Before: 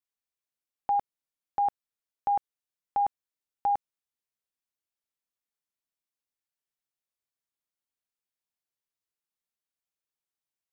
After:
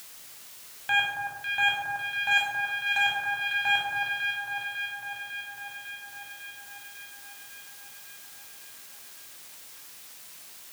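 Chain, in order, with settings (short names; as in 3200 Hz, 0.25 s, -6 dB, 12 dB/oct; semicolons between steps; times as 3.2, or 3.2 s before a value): self-modulated delay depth 0.49 ms; 2.31–2.98 tilt shelf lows -8 dB; echo with dull and thin repeats by turns 0.275 s, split 1400 Hz, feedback 79%, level -6.5 dB; soft clip -23 dBFS, distortion -14 dB; bell 120 Hz +12 dB 0.44 oct; reverb RT60 0.85 s, pre-delay 15 ms, DRR -4 dB; requantised 8-bit, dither triangular; HPF 57 Hz; mismatched tape noise reduction encoder only; gain -4.5 dB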